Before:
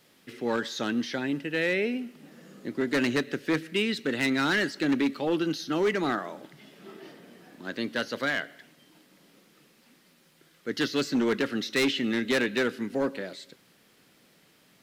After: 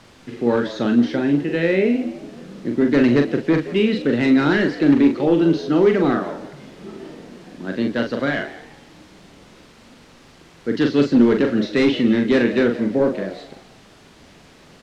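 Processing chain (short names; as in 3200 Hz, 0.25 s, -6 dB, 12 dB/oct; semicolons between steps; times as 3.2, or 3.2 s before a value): in parallel at -10 dB: requantised 6-bit, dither triangular; on the sum: LPF 4600 Hz 12 dB/oct; tilt shelf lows +6 dB, about 720 Hz; doubler 42 ms -5.5 dB; on a send: frequency-shifting echo 0.17 s, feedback 34%, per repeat +87 Hz, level -16 dB; on the sum: gain +4 dB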